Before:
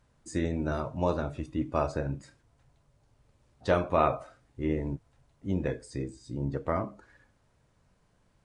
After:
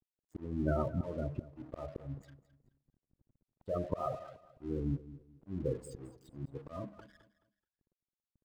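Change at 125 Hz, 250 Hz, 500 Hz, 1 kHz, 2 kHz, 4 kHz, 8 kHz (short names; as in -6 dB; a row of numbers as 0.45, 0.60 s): -5.5 dB, -7.0 dB, -8.5 dB, -12.5 dB, -15.0 dB, under -15 dB, n/a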